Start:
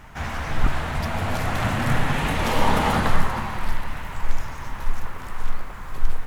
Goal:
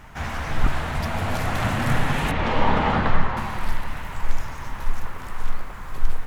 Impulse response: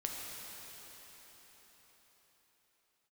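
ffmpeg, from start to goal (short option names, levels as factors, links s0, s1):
-filter_complex "[0:a]asettb=1/sr,asplit=3[s0][s1][s2];[s0]atrim=end=2.314[s3];[s1]atrim=start=2.31:end=3.37,asetpts=PTS-STARTPTS,afade=t=in:d=0.004:c=qsin,afade=t=out:st=1.056:d=0.004:c=qsin,lowpass=3200[s4];[s2]atrim=start=3.366[s5];[s3][s4]acrossfade=d=0.004:c1=hsin:c2=qsin[s6];[s6][s5]acrossfade=d=0.004:c1=qsin:c2=hsin"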